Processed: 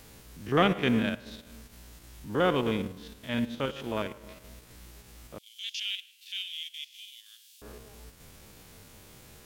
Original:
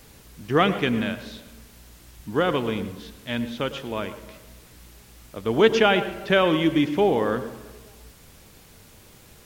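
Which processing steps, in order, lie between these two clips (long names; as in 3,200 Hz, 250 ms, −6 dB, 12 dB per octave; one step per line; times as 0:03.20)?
spectrum averaged block by block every 50 ms
0:05.38–0:07.62: Butterworth high-pass 2,900 Hz 36 dB per octave
transient designer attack −5 dB, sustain −9 dB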